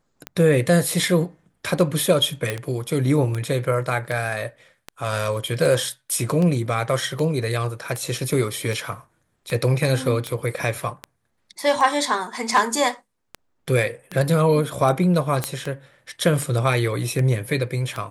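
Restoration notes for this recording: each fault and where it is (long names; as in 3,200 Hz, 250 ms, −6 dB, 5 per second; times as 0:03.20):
scratch tick 78 rpm −14 dBFS
0:02.50: click −10 dBFS
0:15.44: click −7 dBFS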